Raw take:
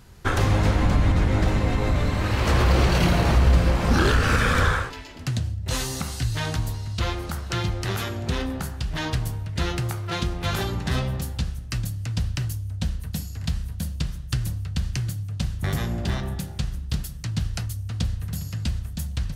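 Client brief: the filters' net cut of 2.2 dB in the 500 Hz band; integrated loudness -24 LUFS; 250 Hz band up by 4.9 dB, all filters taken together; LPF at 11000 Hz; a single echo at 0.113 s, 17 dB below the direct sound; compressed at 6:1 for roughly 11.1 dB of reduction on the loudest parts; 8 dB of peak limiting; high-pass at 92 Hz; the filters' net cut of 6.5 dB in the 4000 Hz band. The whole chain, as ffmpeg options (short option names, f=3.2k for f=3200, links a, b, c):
-af "highpass=92,lowpass=11k,equalizer=f=250:t=o:g=8.5,equalizer=f=500:t=o:g=-6,equalizer=f=4k:t=o:g=-8.5,acompressor=threshold=-27dB:ratio=6,alimiter=level_in=0.5dB:limit=-24dB:level=0:latency=1,volume=-0.5dB,aecho=1:1:113:0.141,volume=10dB"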